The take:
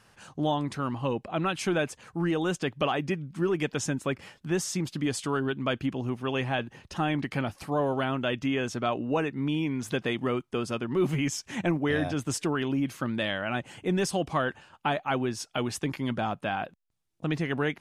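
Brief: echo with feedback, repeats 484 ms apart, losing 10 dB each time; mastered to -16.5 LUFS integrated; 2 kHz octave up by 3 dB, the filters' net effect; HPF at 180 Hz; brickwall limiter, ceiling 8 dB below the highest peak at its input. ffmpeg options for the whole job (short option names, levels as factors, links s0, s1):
-af "highpass=180,equalizer=f=2000:t=o:g=4,alimiter=limit=0.1:level=0:latency=1,aecho=1:1:484|968|1452|1936:0.316|0.101|0.0324|0.0104,volume=5.62"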